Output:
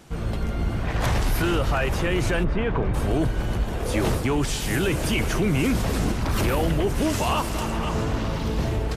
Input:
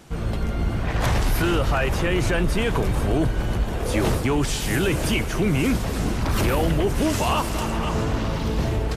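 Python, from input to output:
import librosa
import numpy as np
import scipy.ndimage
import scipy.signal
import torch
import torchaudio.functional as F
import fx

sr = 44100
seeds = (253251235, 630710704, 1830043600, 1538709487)

y = fx.lowpass(x, sr, hz=2100.0, slope=12, at=(2.43, 2.93), fade=0.02)
y = fx.env_flatten(y, sr, amount_pct=50, at=(5.18, 6.12))
y = y * 10.0 ** (-1.5 / 20.0)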